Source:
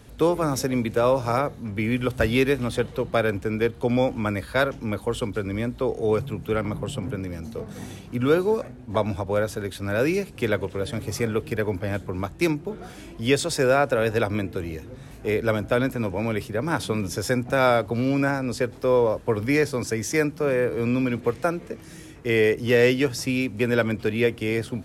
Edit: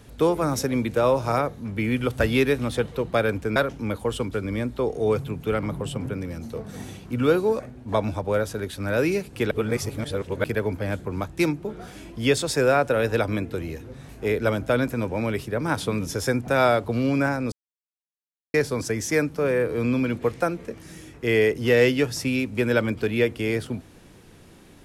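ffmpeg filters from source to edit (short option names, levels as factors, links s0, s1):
-filter_complex "[0:a]asplit=6[s0][s1][s2][s3][s4][s5];[s0]atrim=end=3.562[s6];[s1]atrim=start=4.578:end=10.532[s7];[s2]atrim=start=10.528:end=11.462,asetpts=PTS-STARTPTS,areverse[s8];[s3]atrim=start=11.458:end=18.54,asetpts=PTS-STARTPTS,afade=t=out:st=7.078:d=0.004:c=hsin[s9];[s4]atrim=start=18.54:end=19.56,asetpts=PTS-STARTPTS,volume=0[s10];[s5]atrim=start=19.56,asetpts=PTS-STARTPTS,afade=t=in:d=0.004:c=hsin[s11];[s6][s7]acrossfade=d=0.004:c1=hsin:c2=hsin[s12];[s12][s8]acrossfade=d=0.004:c1=hsin:c2=hsin[s13];[s9][s10][s11]concat=n=3:v=0:a=1[s14];[s13][s14]acrossfade=d=0.004:c1=hsin:c2=hsin"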